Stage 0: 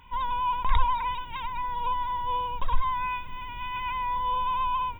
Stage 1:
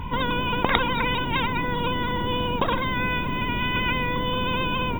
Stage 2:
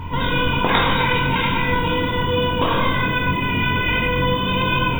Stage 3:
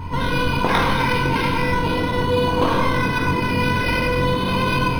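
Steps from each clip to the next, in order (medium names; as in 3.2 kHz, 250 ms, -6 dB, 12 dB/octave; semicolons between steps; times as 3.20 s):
tilt shelf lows +8.5 dB, about 690 Hz; spectrum-flattening compressor 10:1; trim +2 dB
on a send: flutter echo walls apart 3.8 m, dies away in 0.2 s; on the sum: gated-style reverb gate 450 ms falling, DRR -2.5 dB
repeats whose band climbs or falls 610 ms, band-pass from 300 Hz, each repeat 0.7 oct, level -3 dB; decimation joined by straight lines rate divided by 6×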